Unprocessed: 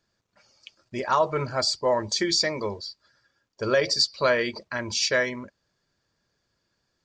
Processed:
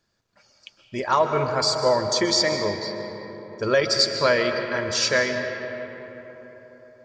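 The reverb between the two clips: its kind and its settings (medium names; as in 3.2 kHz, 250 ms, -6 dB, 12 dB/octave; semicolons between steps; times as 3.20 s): algorithmic reverb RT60 4.2 s, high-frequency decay 0.45×, pre-delay 95 ms, DRR 5.5 dB; trim +2 dB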